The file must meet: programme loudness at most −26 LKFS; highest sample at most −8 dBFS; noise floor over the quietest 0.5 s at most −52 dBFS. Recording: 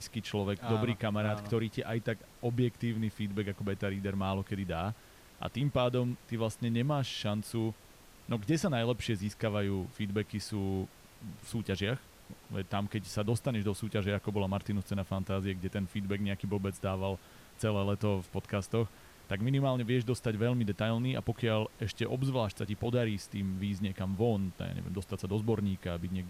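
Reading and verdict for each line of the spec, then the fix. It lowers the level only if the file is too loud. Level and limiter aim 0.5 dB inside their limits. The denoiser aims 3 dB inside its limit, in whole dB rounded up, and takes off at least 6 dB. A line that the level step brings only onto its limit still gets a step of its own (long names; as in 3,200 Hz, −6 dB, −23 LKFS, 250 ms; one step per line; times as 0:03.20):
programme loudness −34.0 LKFS: in spec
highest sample −18.5 dBFS: in spec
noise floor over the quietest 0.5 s −56 dBFS: in spec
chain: no processing needed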